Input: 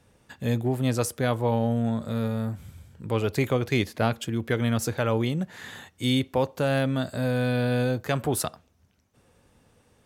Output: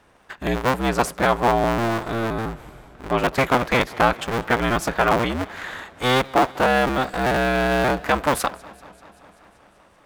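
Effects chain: cycle switcher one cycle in 2, inverted; peaking EQ 1.2 kHz +12.5 dB 2.9 oct; modulated delay 193 ms, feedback 73%, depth 134 cents, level -23 dB; trim -1.5 dB

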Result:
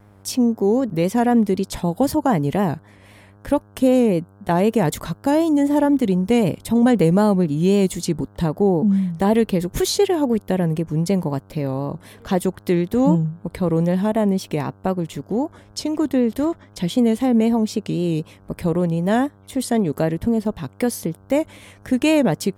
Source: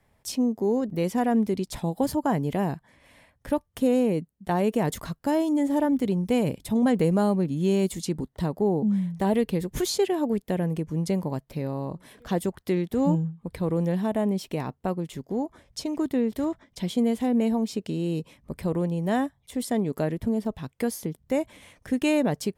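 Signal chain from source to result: mains buzz 100 Hz, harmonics 16, -56 dBFS -6 dB/octave; vibrato 3.9 Hz 62 cents; trim +6.5 dB

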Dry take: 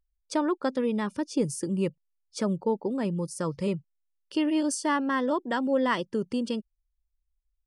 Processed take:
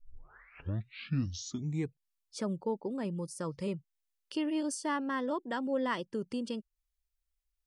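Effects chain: tape start-up on the opening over 2.16 s; tape noise reduction on one side only encoder only; trim -7 dB

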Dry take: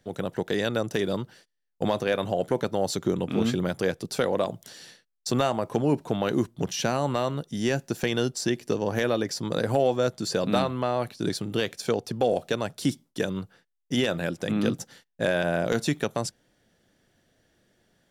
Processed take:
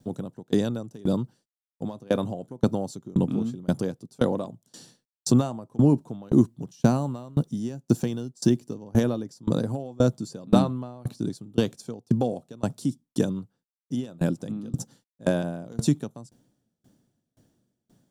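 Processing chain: 6.61–8.75 s: block-companded coder 7-bit; graphic EQ 125/250/1000/2000/8000 Hz +11/+11/+5/-10/+7 dB; bit crusher 12-bit; sawtooth tremolo in dB decaying 1.9 Hz, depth 28 dB

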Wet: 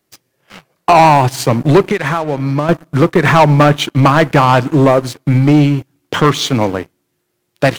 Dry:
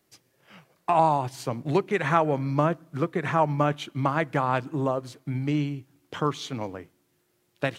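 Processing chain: 1.82–2.69 s: compression 8:1, threshold -32 dBFS, peak gain reduction 16.5 dB; waveshaping leveller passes 3; trim +8 dB

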